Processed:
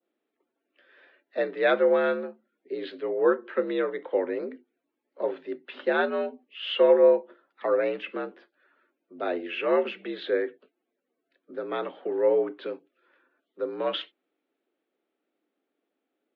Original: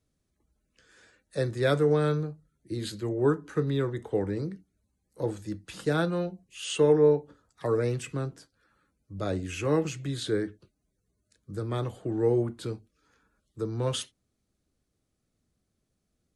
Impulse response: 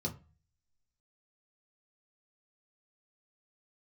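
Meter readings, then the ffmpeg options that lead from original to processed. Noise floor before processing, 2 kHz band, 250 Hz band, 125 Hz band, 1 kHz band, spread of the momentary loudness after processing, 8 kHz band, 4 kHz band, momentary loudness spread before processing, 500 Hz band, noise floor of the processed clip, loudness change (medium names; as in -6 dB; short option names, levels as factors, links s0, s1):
-79 dBFS, +6.0 dB, -3.0 dB, under -20 dB, +4.5 dB, 16 LU, under -30 dB, +2.0 dB, 14 LU, +3.5 dB, -83 dBFS, +2.0 dB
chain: -af "highpass=f=220:t=q:w=0.5412,highpass=f=220:t=q:w=1.307,lowpass=f=3300:t=q:w=0.5176,lowpass=f=3300:t=q:w=0.7071,lowpass=f=3300:t=q:w=1.932,afreqshift=65,adynamicequalizer=threshold=0.00631:dfrequency=2300:dqfactor=0.76:tfrequency=2300:tqfactor=0.76:attack=5:release=100:ratio=0.375:range=2:mode=boostabove:tftype=bell,volume=1.33"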